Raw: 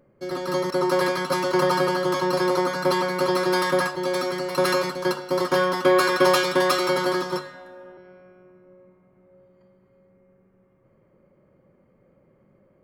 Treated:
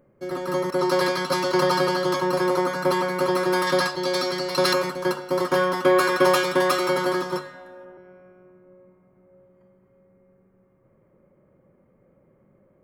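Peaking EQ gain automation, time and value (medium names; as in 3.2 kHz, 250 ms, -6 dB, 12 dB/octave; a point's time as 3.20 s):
peaking EQ 4.5 kHz 1 oct
-6.5 dB
from 0.79 s +3.5 dB
from 2.16 s -4 dB
from 3.67 s +7.5 dB
from 4.73 s -3.5 dB
from 7.85 s -12.5 dB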